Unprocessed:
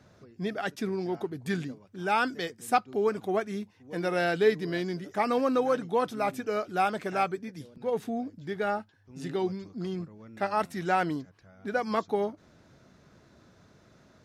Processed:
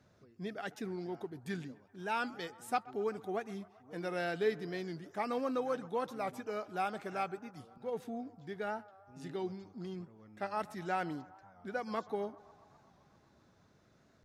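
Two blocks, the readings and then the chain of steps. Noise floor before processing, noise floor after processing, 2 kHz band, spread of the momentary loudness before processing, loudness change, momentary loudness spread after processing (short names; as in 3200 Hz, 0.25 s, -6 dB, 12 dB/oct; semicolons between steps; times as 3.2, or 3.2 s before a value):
-61 dBFS, -67 dBFS, -9.0 dB, 11 LU, -9.0 dB, 11 LU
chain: on a send: narrowing echo 0.129 s, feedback 80%, band-pass 940 Hz, level -19 dB; on the sum: record warp 45 rpm, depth 100 cents; gain -9 dB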